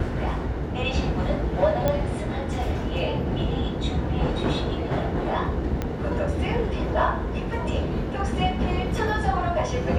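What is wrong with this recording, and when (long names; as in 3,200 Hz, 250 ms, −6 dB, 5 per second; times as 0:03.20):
0:01.88: click −10 dBFS
0:05.82: click −13 dBFS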